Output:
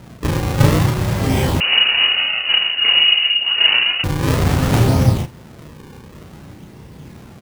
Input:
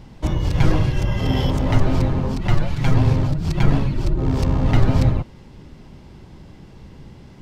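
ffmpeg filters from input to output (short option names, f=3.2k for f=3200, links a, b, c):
-filter_complex "[0:a]highpass=77,acrusher=samples=38:mix=1:aa=0.000001:lfo=1:lforange=60.8:lforate=0.55,aecho=1:1:33|73:0.708|0.141,asettb=1/sr,asplit=3[a][b][c];[a]atrim=end=1.604[d];[b]atrim=start=1.6:end=4.04,asetpts=PTS-STARTPTS,afade=t=in:d=0.004:c=qsin,afade=t=out:st=2.436:d=0.004:c=qsin,lowpass=f=2.6k:t=q:w=0.5098,lowpass=f=2.6k:t=q:w=0.6013,lowpass=f=2.6k:t=q:w=0.9,lowpass=f=2.6k:t=q:w=2.563,afreqshift=-3000[e];[c]atrim=start=4.036[f];[d][e]acrossfade=d=0.004:c1=hsin:c2=qsin[g];[g][f]acrossfade=d=0.004:c1=qsin:c2=hsin,volume=3.5dB"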